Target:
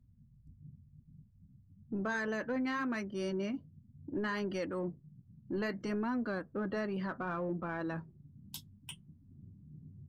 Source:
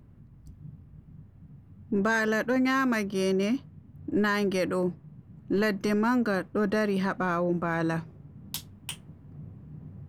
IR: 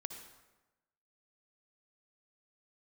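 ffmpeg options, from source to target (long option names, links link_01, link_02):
-filter_complex "[0:a]flanger=delay=3.2:depth=5.7:regen=-70:speed=0.64:shape=sinusoidal,afftdn=noise_reduction=20:noise_floor=-48,asplit=2[link_01][link_02];[link_02]asoftclip=type=tanh:threshold=-32.5dB,volume=-8.5dB[link_03];[link_01][link_03]amix=inputs=2:normalize=0,volume=-7dB"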